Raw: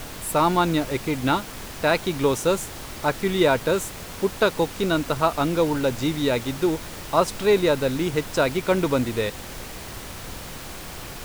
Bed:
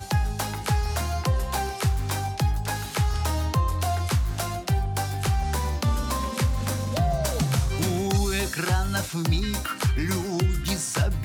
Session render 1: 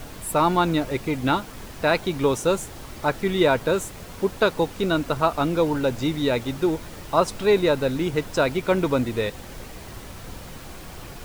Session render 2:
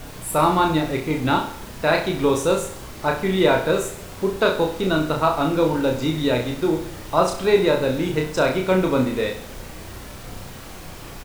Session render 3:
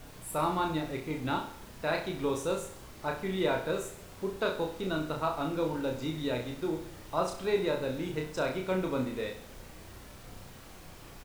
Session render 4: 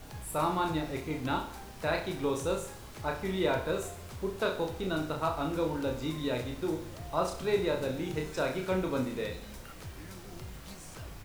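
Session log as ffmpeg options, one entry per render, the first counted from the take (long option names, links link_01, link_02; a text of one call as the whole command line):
ffmpeg -i in.wav -af "afftdn=noise_reduction=6:noise_floor=-37" out.wav
ffmpeg -i in.wav -filter_complex "[0:a]asplit=2[link_01][link_02];[link_02]adelay=32,volume=-3.5dB[link_03];[link_01][link_03]amix=inputs=2:normalize=0,aecho=1:1:65|130|195|260|325:0.316|0.152|0.0729|0.035|0.0168" out.wav
ffmpeg -i in.wav -af "volume=-12dB" out.wav
ffmpeg -i in.wav -i bed.wav -filter_complex "[1:a]volume=-22dB[link_01];[0:a][link_01]amix=inputs=2:normalize=0" out.wav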